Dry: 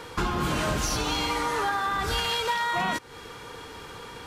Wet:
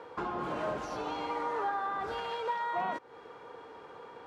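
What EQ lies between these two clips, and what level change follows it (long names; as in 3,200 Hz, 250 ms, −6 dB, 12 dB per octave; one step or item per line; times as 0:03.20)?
resonant band-pass 630 Hz, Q 1.1
−2.5 dB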